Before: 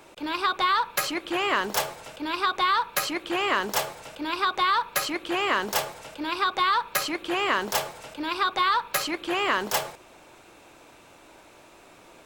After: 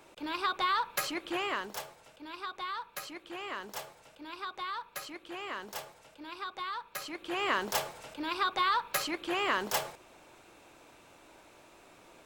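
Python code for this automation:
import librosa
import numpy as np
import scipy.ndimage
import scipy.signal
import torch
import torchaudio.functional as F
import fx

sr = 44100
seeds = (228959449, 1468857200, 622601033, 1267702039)

y = fx.gain(x, sr, db=fx.line((1.36, -6.5), (1.82, -15.0), (6.91, -15.0), (7.48, -5.5)))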